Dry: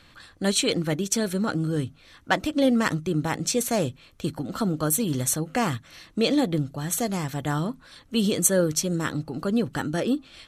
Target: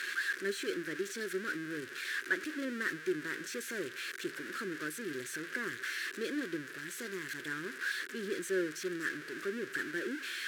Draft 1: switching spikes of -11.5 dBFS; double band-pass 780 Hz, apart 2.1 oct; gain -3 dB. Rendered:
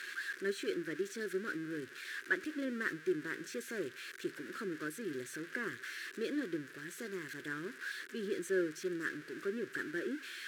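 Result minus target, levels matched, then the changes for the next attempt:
switching spikes: distortion -6 dB
change: switching spikes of -5 dBFS

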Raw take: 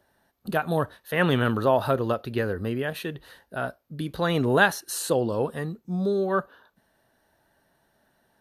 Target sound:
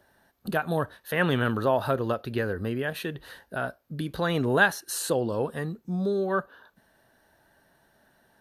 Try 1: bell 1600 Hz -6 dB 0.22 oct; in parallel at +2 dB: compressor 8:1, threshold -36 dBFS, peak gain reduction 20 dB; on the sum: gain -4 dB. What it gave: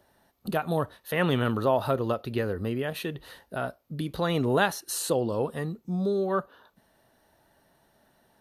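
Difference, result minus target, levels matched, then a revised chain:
2000 Hz band -5.0 dB
bell 1600 Hz +3.5 dB 0.22 oct; in parallel at +2 dB: compressor 8:1, threshold -36 dBFS, peak gain reduction 23 dB; on the sum: gain -4 dB

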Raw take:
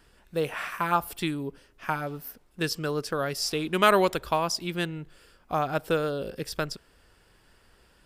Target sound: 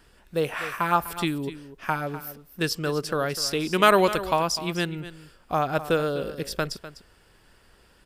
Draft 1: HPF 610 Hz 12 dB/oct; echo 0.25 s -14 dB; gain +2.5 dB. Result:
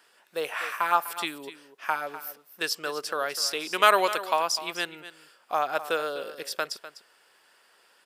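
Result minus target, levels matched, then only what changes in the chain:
500 Hz band -2.5 dB
remove: HPF 610 Hz 12 dB/oct

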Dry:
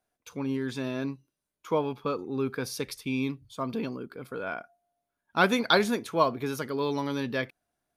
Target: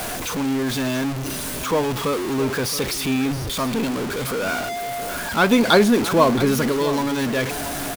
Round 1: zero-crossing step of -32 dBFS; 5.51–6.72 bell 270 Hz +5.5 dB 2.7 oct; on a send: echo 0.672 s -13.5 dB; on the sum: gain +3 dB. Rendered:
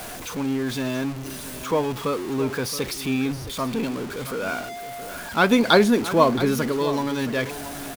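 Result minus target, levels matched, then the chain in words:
zero-crossing step: distortion -6 dB
zero-crossing step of -24.5 dBFS; 5.51–6.72 bell 270 Hz +5.5 dB 2.7 oct; on a send: echo 0.672 s -13.5 dB; on the sum: gain +3 dB

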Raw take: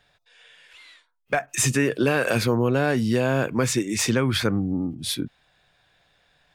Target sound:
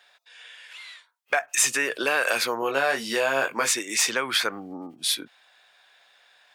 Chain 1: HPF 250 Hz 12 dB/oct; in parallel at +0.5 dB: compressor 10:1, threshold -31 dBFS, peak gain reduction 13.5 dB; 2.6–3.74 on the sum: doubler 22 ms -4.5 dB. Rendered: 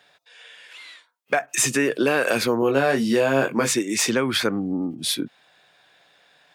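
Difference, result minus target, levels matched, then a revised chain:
250 Hz band +11.0 dB
HPF 750 Hz 12 dB/oct; in parallel at +0.5 dB: compressor 10:1, threshold -31 dBFS, peak gain reduction 13 dB; 2.6–3.74 on the sum: doubler 22 ms -4.5 dB

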